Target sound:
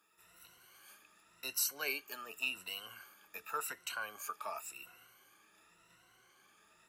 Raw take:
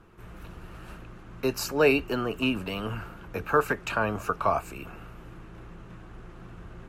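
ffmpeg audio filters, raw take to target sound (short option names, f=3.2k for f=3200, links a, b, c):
-af "afftfilt=real='re*pow(10,14/40*sin(2*PI*(2*log(max(b,1)*sr/1024/100)/log(2)-(0.9)*(pts-256)/sr)))':imag='im*pow(10,14/40*sin(2*PI*(2*log(max(b,1)*sr/1024/100)/log(2)-(0.9)*(pts-256)/sr)))':win_size=1024:overlap=0.75,aeval=exprs='0.422*(cos(1*acos(clip(val(0)/0.422,-1,1)))-cos(1*PI/2))+0.015*(cos(2*acos(clip(val(0)/0.422,-1,1)))-cos(2*PI/2))':c=same,aderivative,volume=-1.5dB"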